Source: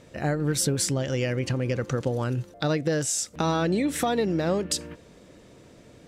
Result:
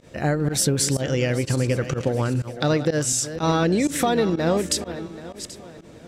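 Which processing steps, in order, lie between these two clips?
regenerating reverse delay 0.391 s, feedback 52%, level -12 dB; pump 124 bpm, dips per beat 1, -21 dB, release 77 ms; gain +4 dB

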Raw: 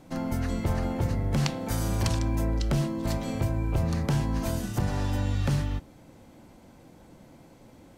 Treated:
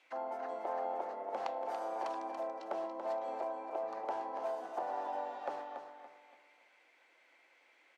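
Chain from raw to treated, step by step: HPF 340 Hz 24 dB/oct; auto-wah 760–2800 Hz, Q 3.1, down, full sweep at -38.5 dBFS; feedback echo 0.284 s, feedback 34%, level -8 dB; gain +3 dB

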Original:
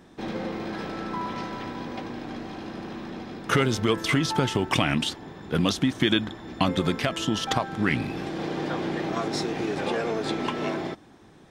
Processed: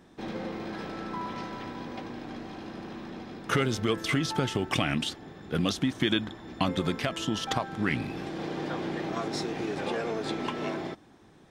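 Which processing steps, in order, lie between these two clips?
3.58–5.76 notch 960 Hz, Q 7.8; gain -4 dB

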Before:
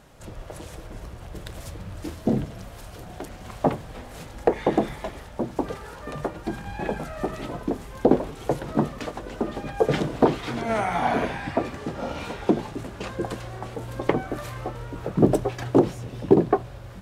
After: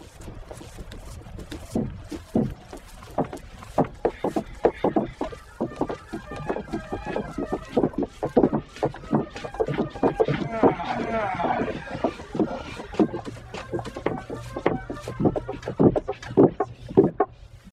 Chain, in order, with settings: tempo 0.96×; treble ducked by the level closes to 2500 Hz, closed at -17.5 dBFS; reverb removal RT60 1.6 s; reverse echo 0.6 s -3.5 dB

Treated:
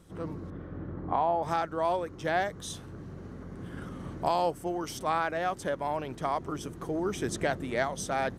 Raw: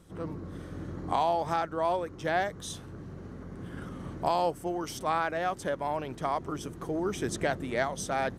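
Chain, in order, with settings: 0.5–1.43 LPF 1700 Hz 12 dB/oct

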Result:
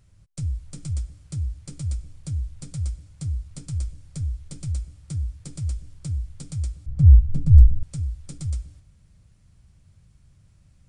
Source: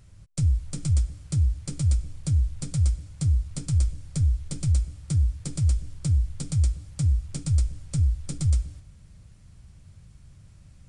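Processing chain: 6.86–7.83 tilt -4.5 dB/oct; gain -5.5 dB

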